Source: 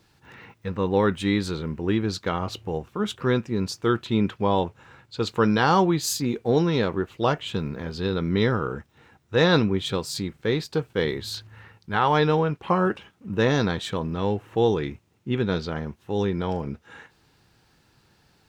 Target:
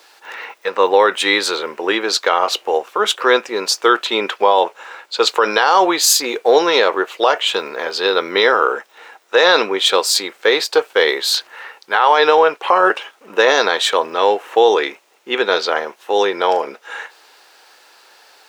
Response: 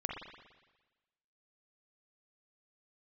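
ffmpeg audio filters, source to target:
-af "highpass=f=490:w=0.5412,highpass=f=490:w=1.3066,alimiter=level_in=7.5:limit=0.891:release=50:level=0:latency=1,volume=0.891"

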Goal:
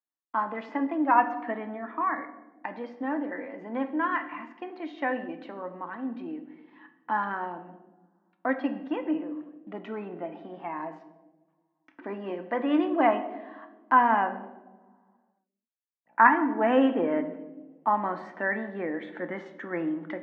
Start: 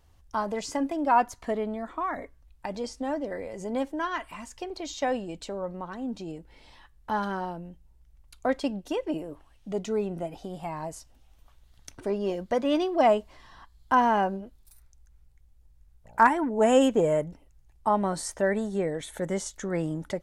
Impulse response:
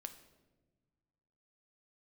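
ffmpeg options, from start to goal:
-filter_complex "[0:a]highpass=f=250:w=0.5412,highpass=f=250:w=1.3066,equalizer=f=290:t=q:w=4:g=6,equalizer=f=410:t=q:w=4:g=-10,equalizer=f=590:t=q:w=4:g=-6,equalizer=f=1100:t=q:w=4:g=3,equalizer=f=1800:t=q:w=4:g=6,lowpass=f=2500:w=0.5412,lowpass=f=2500:w=1.3066,agate=range=0.0224:threshold=0.00282:ratio=3:detection=peak[s0];[1:a]atrim=start_sample=2205,asetrate=48510,aresample=44100[s1];[s0][s1]afir=irnorm=-1:irlink=0,volume=2"

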